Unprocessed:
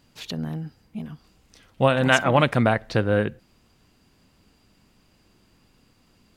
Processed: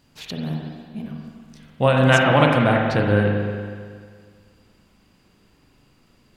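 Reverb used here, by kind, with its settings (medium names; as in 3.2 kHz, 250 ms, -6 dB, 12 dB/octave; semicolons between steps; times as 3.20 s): spring tank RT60 1.9 s, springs 39/46 ms, chirp 50 ms, DRR 0 dB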